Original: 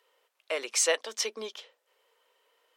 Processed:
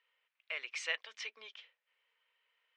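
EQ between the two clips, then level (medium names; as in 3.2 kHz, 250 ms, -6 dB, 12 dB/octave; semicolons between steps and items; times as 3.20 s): band-pass filter 2.3 kHz, Q 2.1; distance through air 73 m; -1.5 dB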